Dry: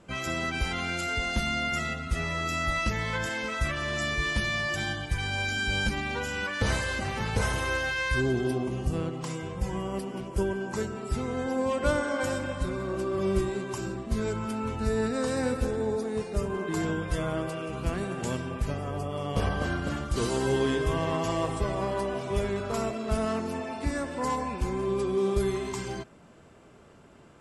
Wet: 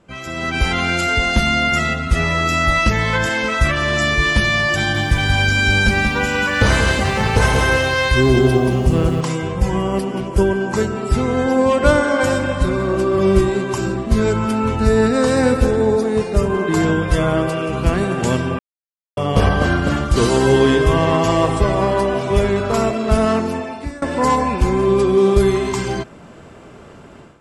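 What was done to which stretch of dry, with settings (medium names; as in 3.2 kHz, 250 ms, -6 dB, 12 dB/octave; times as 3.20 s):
4.76–9.21 s: bit-crushed delay 183 ms, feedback 35%, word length 9-bit, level -4.5 dB
18.59–19.17 s: mute
23.36–24.02 s: fade out, to -21.5 dB
whole clip: level rider gain up to 13 dB; treble shelf 6.9 kHz -5.5 dB; trim +1 dB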